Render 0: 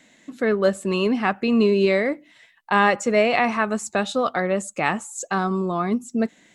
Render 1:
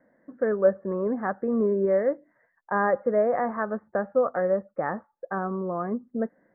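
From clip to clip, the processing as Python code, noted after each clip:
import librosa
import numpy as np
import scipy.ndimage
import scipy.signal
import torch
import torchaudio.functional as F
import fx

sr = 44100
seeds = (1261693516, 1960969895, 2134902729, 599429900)

y = scipy.signal.sosfilt(scipy.signal.butter(12, 1800.0, 'lowpass', fs=sr, output='sos'), x)
y = fx.peak_eq(y, sr, hz=530.0, db=11.0, octaves=0.38)
y = y * 10.0 ** (-7.5 / 20.0)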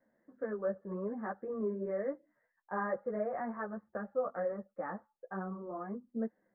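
y = fx.ensemble(x, sr)
y = y * 10.0 ** (-8.0 / 20.0)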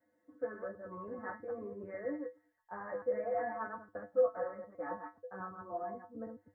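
y = fx.reverse_delay(x, sr, ms=108, wet_db=-5.0)
y = fx.comb_fb(y, sr, f0_hz=100.0, decay_s=0.18, harmonics='odd', damping=0.0, mix_pct=100)
y = y * 10.0 ** (9.0 / 20.0)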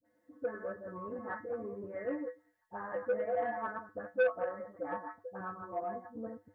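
y = fx.dispersion(x, sr, late='highs', ms=51.0, hz=790.0)
y = fx.transformer_sat(y, sr, knee_hz=850.0)
y = y * 10.0 ** (2.5 / 20.0)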